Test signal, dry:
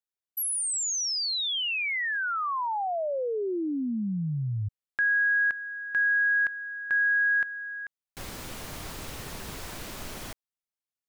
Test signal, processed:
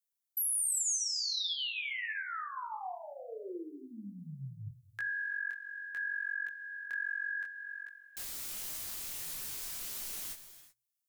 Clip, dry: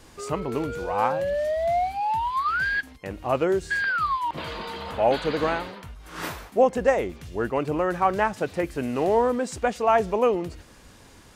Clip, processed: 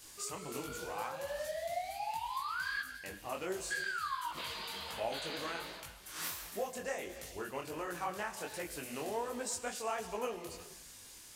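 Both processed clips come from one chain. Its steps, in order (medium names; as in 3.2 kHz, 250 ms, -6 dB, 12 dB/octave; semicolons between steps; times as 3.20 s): pre-emphasis filter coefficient 0.9; hum notches 60/120 Hz; compression 2:1, threshold -44 dBFS; gated-style reverb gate 400 ms flat, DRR 10 dB; detune thickener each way 48 cents; trim +8.5 dB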